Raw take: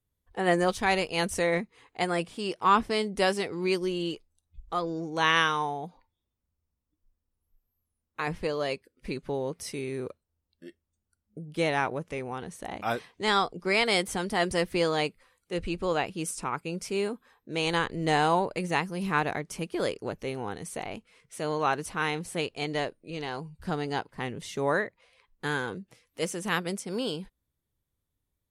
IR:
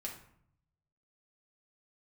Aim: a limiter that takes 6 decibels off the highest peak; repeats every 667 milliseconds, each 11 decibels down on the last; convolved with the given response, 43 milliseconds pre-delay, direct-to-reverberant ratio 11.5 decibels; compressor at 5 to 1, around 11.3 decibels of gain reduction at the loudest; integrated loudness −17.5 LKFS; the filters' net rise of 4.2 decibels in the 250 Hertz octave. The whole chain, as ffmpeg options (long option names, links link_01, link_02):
-filter_complex "[0:a]equalizer=frequency=250:width_type=o:gain=6.5,acompressor=threshold=-29dB:ratio=5,alimiter=limit=-24dB:level=0:latency=1,aecho=1:1:667|1334|2001:0.282|0.0789|0.0221,asplit=2[link_01][link_02];[1:a]atrim=start_sample=2205,adelay=43[link_03];[link_02][link_03]afir=irnorm=-1:irlink=0,volume=-10.5dB[link_04];[link_01][link_04]amix=inputs=2:normalize=0,volume=18.5dB"